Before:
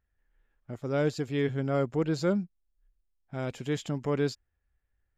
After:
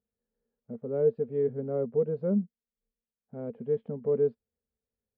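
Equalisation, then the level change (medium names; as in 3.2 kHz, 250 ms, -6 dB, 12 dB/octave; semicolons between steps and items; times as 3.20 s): two resonant band-passes 320 Hz, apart 0.99 oct; distance through air 490 m; +8.5 dB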